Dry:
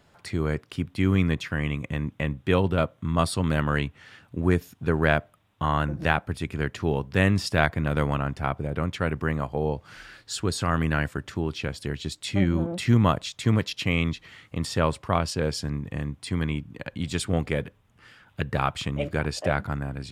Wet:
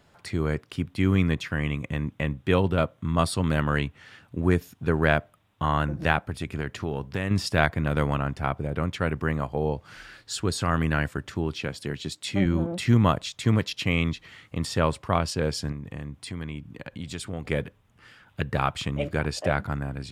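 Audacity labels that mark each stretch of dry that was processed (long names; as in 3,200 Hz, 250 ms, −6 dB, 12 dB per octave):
6.270000	7.310000	downward compressor, threshold −23 dBFS
11.590000	12.460000	high-pass filter 110 Hz
15.720000	17.450000	downward compressor 2 to 1, threshold −35 dBFS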